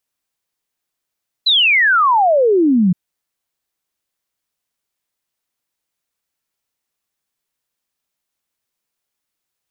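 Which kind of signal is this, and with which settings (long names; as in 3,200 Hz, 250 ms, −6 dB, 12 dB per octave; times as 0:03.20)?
exponential sine sweep 4,100 Hz → 170 Hz 1.47 s −9.5 dBFS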